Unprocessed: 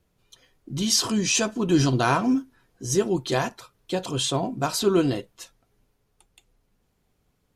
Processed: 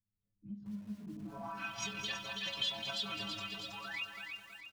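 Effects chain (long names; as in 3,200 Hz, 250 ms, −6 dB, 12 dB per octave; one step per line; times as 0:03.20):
loose part that buzzes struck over −31 dBFS, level −30 dBFS
automatic gain control gain up to 6.5 dB
sound drawn into the spectrogram rise, 0:05.67–0:06.44, 360–2,900 Hz −32 dBFS
on a send: delay that swaps between a low-pass and a high-pass 259 ms, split 1,100 Hz, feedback 68%, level −3 dB
on the sum: low-pass filter sweep 260 Hz → 3,400 Hz, 0:01.95–0:02.69
stiff-string resonator 100 Hz, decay 0.6 s, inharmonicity 0.008
tempo change 1.6×
parametric band 370 Hz −10.5 dB 0.86 octaves
downward compressor 4 to 1, threshold −35 dBFS, peak gain reduction 10.5 dB
guitar amp tone stack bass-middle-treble 5-5-5
hum removal 61 Hz, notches 6
feedback echo at a low word length 210 ms, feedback 35%, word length 11 bits, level −7.5 dB
level +9.5 dB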